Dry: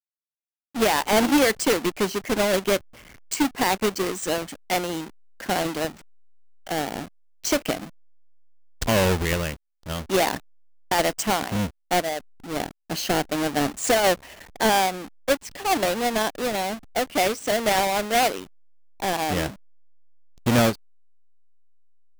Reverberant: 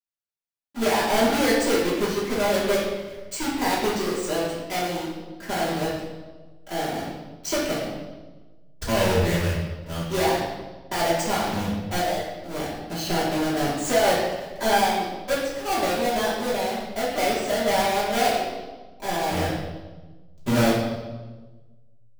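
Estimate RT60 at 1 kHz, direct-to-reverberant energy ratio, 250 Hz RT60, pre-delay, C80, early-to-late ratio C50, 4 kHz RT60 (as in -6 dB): 1.1 s, -9.0 dB, 1.5 s, 3 ms, 3.5 dB, 1.0 dB, 1.1 s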